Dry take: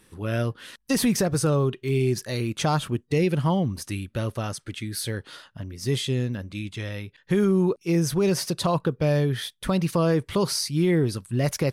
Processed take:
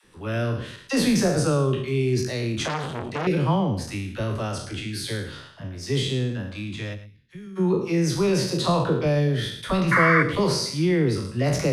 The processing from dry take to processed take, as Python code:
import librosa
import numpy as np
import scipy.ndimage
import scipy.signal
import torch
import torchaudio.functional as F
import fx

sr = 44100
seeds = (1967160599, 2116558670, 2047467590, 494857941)

y = fx.spec_trails(x, sr, decay_s=0.66)
y = fx.tone_stack(y, sr, knobs='6-0-2', at=(6.93, 7.55), fade=0.02)
y = fx.dispersion(y, sr, late='lows', ms=47.0, hz=390.0)
y = fx.spec_paint(y, sr, seeds[0], shape='noise', start_s=9.91, length_s=0.32, low_hz=1000.0, high_hz=2300.0, level_db=-19.0)
y = fx.air_absorb(y, sr, metres=52.0)
y = y + 10.0 ** (-14.0 / 20.0) * np.pad(y, (int(109 * sr / 1000.0), 0))[:len(y)]
y = fx.transformer_sat(y, sr, knee_hz=1500.0, at=(2.66, 3.27))